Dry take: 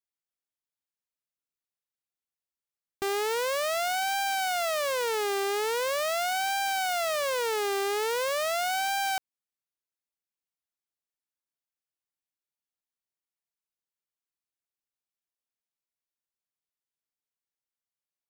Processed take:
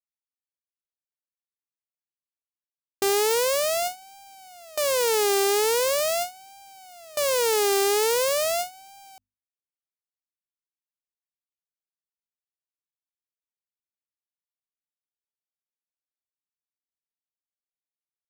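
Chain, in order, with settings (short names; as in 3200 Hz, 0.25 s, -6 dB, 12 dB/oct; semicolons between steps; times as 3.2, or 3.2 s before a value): median filter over 41 samples; notches 50/100/150/200/250 Hz; gate with hold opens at -30 dBFS; tone controls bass +2 dB, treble +9 dB; gain +7.5 dB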